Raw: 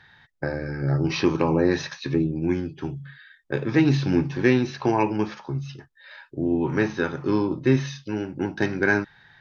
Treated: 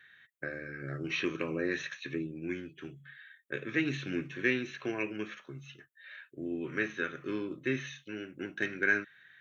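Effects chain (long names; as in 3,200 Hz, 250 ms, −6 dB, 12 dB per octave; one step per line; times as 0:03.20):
high-pass filter 750 Hz 6 dB per octave
high-shelf EQ 4,400 Hz +6.5 dB
phaser with its sweep stopped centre 2,100 Hz, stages 4
level −3 dB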